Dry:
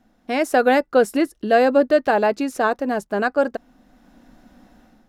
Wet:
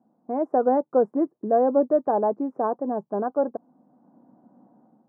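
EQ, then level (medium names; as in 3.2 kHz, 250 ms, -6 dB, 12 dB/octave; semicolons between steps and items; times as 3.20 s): elliptic band-pass 140–1000 Hz, stop band 50 dB; -3.5 dB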